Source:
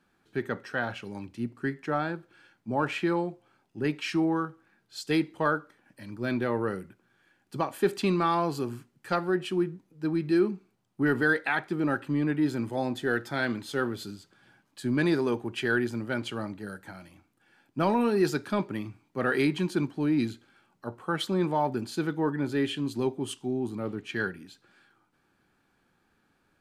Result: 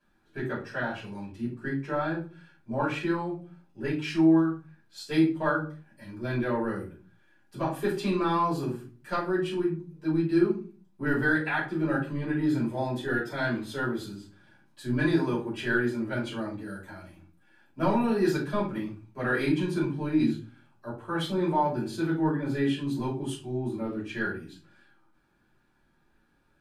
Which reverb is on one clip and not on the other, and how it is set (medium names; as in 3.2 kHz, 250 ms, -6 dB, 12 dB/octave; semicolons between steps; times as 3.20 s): simulated room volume 190 m³, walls furnished, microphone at 5.5 m; trim -11.5 dB